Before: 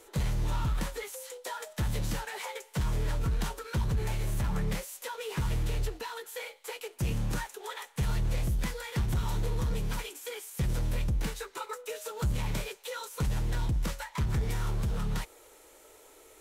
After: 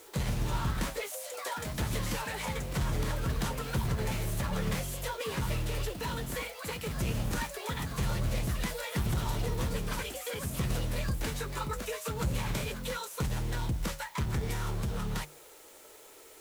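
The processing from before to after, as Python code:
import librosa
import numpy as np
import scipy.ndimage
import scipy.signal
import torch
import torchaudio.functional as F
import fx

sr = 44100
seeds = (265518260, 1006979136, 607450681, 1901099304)

p1 = fx.quant_dither(x, sr, seeds[0], bits=8, dither='triangular')
p2 = x + (p1 * librosa.db_to_amplitude(-9.0))
p3 = fx.low_shelf(p2, sr, hz=71.0, db=-7.5)
p4 = fx.hum_notches(p3, sr, base_hz=50, count=3)
p5 = fx.echo_pitch(p4, sr, ms=153, semitones=3, count=2, db_per_echo=-6.0)
y = p5 * librosa.db_to_amplitude(-1.5)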